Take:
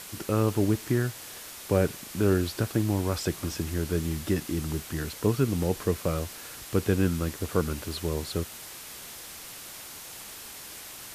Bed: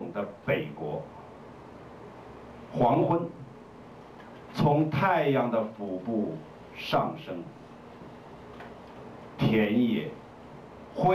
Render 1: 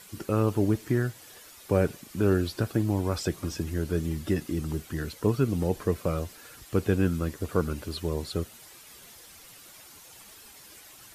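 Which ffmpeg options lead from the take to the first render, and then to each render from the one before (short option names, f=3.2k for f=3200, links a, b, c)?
-af "afftdn=nr=10:nf=-43"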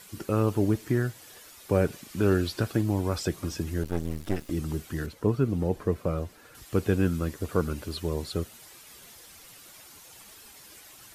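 -filter_complex "[0:a]asettb=1/sr,asplit=3[a][b][c];[a]atrim=end=1.924[d];[b]atrim=start=1.92:end=2.81,asetpts=PTS-STARTPTS,afade=t=in:d=0.004:c=qsin,afade=t=out:st=0.886:d=0.004:c=qsin,equalizer=f=3.1k:w=0.41:g=3[e];[c]atrim=start=2.806[f];[d][e]acrossfade=d=0.004:c1=hsin:c2=qsin[g];[g][f]acrossfade=d=0.004:c1=qsin:c2=hsin,asettb=1/sr,asplit=3[h][i][j];[h]atrim=end=3.834[k];[i]atrim=start=3.83:end=4.5,asetpts=PTS-STARTPTS,afade=t=in:d=0.004:c=qsin,afade=t=out:st=0.666:d=0.004:c=qsin,aeval=exprs='max(val(0),0)':c=same[l];[j]atrim=start=4.496[m];[k][l]acrossfade=d=0.004:c1=hsin:c2=qsin[n];[n][m]acrossfade=d=0.004:c1=qsin:c2=hsin,asettb=1/sr,asplit=3[o][p][q];[o]atrim=end=5.064[r];[p]atrim=start=5.06:end=6.55,asetpts=PTS-STARTPTS,afade=t=in:d=0.004:c=qsin,afade=t=out:st=1.486:d=0.004:c=qsin,highshelf=f=2.3k:g=-9.5[s];[q]atrim=start=6.546[t];[r][s]acrossfade=d=0.004:c1=hsin:c2=qsin[u];[u][t]acrossfade=d=0.004:c1=qsin:c2=hsin"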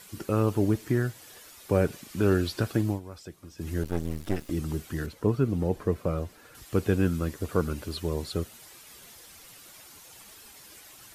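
-filter_complex "[0:a]asplit=3[a][b][c];[a]atrim=end=3,asetpts=PTS-STARTPTS,afade=t=out:st=2.85:d=0.15:c=qsin:silence=0.188365[d];[b]atrim=start=3:end=3.57,asetpts=PTS-STARTPTS,volume=-14.5dB[e];[c]atrim=start=3.57,asetpts=PTS-STARTPTS,afade=t=in:d=0.15:c=qsin:silence=0.188365[f];[d][e][f]concat=n=3:v=0:a=1"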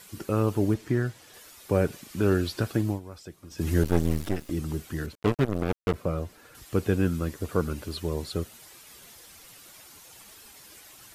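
-filter_complex "[0:a]asettb=1/sr,asplit=3[a][b][c];[a]atrim=end=0.744[d];[b]atrim=start=0.74:end=1.34,asetpts=PTS-STARTPTS,afade=t=in:d=0.004:c=qsin,afade=t=out:st=0.596:d=0.004:c=qsin,highshelf=f=10k:g=-12[e];[c]atrim=start=1.336[f];[d][e]acrossfade=d=0.004:c1=hsin:c2=qsin[g];[g][f]acrossfade=d=0.004:c1=qsin:c2=hsin,asplit=3[h][i][j];[h]afade=t=out:st=3.5:d=0.02[k];[i]acontrast=82,afade=t=in:st=3.5:d=0.02,afade=t=out:st=4.27:d=0.02[l];[j]afade=t=in:st=4.27:d=0.02[m];[k][l][m]amix=inputs=3:normalize=0,asettb=1/sr,asplit=3[n][o][p];[n]atrim=end=5.154[q];[o]atrim=start=5.15:end=5.94,asetpts=PTS-STARTPTS,afade=t=in:d=0.004:c=qsin,afade=t=out:st=0.786:d=0.004:c=qsin,acrusher=bits=3:mix=0:aa=0.5[r];[p]atrim=start=5.936[s];[q][r]acrossfade=d=0.004:c1=hsin:c2=qsin[t];[t][s]acrossfade=d=0.004:c1=qsin:c2=hsin"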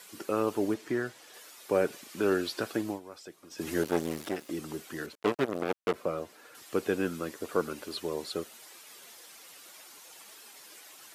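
-af "highpass=330,highshelf=f=11k:g=-4"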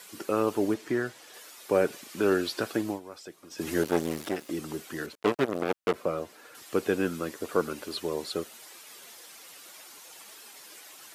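-af "volume=2.5dB"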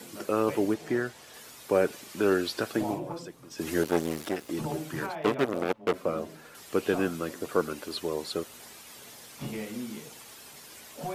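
-filter_complex "[1:a]volume=-12.5dB[a];[0:a][a]amix=inputs=2:normalize=0"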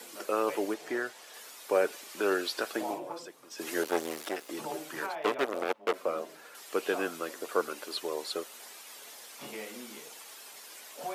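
-af "highpass=450"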